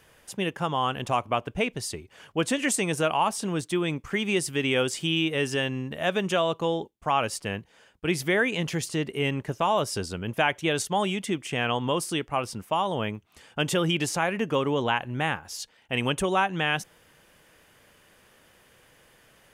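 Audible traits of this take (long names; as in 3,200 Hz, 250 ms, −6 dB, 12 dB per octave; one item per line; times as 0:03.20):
background noise floor −59 dBFS
spectral slope −4.0 dB per octave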